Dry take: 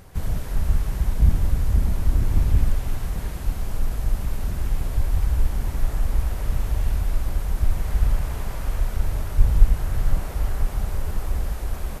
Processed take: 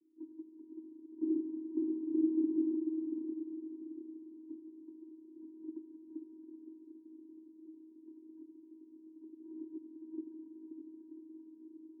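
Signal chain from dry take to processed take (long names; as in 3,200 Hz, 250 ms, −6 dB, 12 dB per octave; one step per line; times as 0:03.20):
Chebyshev band-pass filter 210–560 Hz, order 5
noise gate −40 dBFS, range −19 dB
feedback delay with all-pass diffusion 559 ms, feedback 49%, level −6 dB
convolution reverb RT60 1.7 s, pre-delay 32 ms, DRR 8.5 dB
channel vocoder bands 16, square 318 Hz
spectral tilt −4 dB per octave
level +1 dB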